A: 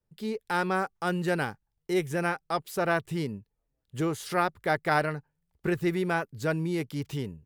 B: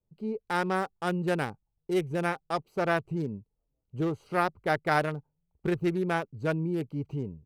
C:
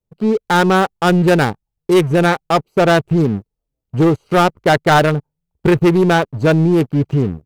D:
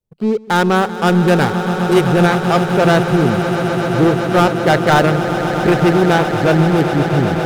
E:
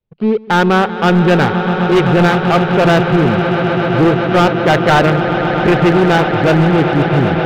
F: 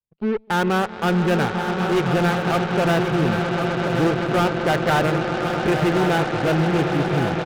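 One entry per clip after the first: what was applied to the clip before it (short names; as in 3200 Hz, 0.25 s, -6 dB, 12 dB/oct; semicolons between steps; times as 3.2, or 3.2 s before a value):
Wiener smoothing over 25 samples
sample leveller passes 3; gain +7 dB
swelling echo 0.129 s, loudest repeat 8, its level -13 dB; gain -1 dB
ladder low-pass 4000 Hz, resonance 25%; overloaded stage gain 14.5 dB; gain +8.5 dB
added harmonics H 3 -26 dB, 6 -23 dB, 7 -22 dB, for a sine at -5.5 dBFS; on a send: echo 1.079 s -8.5 dB; on the sum: gain -8.5 dB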